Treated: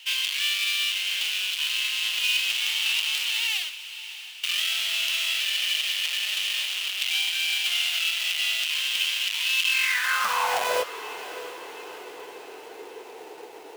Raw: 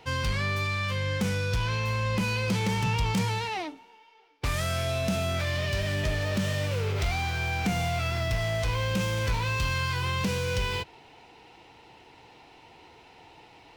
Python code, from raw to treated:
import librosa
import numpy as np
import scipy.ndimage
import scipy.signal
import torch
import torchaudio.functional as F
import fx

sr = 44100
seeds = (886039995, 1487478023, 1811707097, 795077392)

y = fx.halfwave_hold(x, sr)
y = fx.filter_sweep_highpass(y, sr, from_hz=2900.0, to_hz=420.0, start_s=9.67, end_s=11.0, q=5.3)
y = fx.echo_diffused(y, sr, ms=661, feedback_pct=55, wet_db=-14)